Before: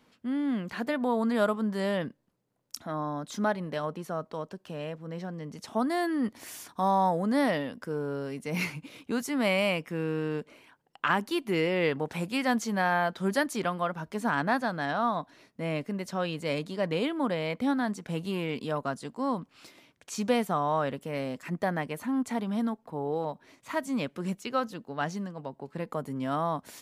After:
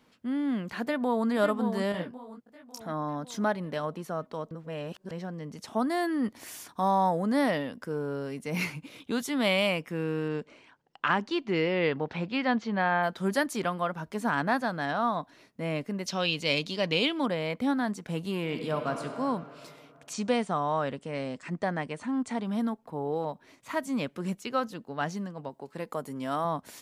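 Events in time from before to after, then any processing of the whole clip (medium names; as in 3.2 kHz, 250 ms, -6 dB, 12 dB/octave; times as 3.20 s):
0.81–1.27 s: echo throw 550 ms, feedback 50%, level -7 dB
1.92–2.80 s: detune thickener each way 58 cents
4.51–5.11 s: reverse
9.00–9.67 s: peaking EQ 3.5 kHz +12.5 dB 0.3 oct
10.28–13.02 s: low-pass 8.4 kHz -> 3.6 kHz 24 dB/octave
16.06–17.26 s: high-order bell 3.9 kHz +11 dB
18.39–19.05 s: reverb throw, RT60 2.8 s, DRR 4.5 dB
20.13–22.45 s: elliptic low-pass 9.1 kHz
25.49–26.45 s: tone controls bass -6 dB, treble +5 dB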